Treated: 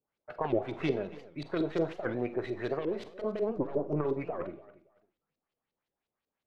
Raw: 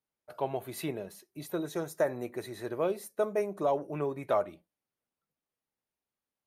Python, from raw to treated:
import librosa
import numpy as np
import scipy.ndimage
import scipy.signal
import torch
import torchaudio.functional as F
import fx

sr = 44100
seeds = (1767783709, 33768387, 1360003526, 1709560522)

y = fx.tracing_dist(x, sr, depth_ms=0.33)
y = fx.low_shelf(y, sr, hz=72.0, db=12.0, at=(3.49, 4.04))
y = fx.over_compress(y, sr, threshold_db=-31.0, ratio=-0.5)
y = fx.filter_lfo_lowpass(y, sr, shape='saw_up', hz=5.6, low_hz=380.0, high_hz=4700.0, q=2.0)
y = fx.echo_feedback(y, sr, ms=279, feedback_pct=22, wet_db=-19)
y = fx.rev_schroeder(y, sr, rt60_s=0.34, comb_ms=33, drr_db=12.0)
y = fx.record_warp(y, sr, rpm=78.0, depth_cents=250.0)